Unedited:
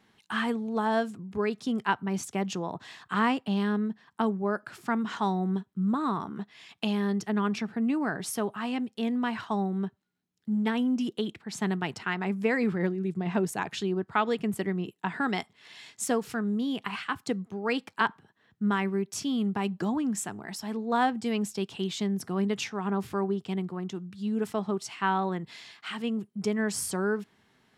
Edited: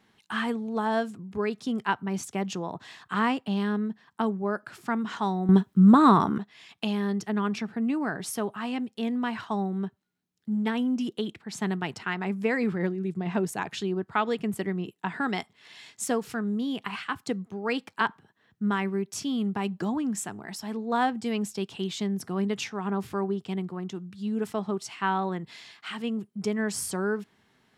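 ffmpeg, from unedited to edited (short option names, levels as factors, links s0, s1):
-filter_complex "[0:a]asplit=3[s0][s1][s2];[s0]atrim=end=5.492[s3];[s1]atrim=start=5.488:end=6.382,asetpts=PTS-STARTPTS,volume=3.76[s4];[s2]atrim=start=6.378[s5];[s3][s4]acrossfade=d=0.004:c1=hsin:c2=hsin[s6];[s6][s5]acrossfade=d=0.004:c1=hsin:c2=hsin"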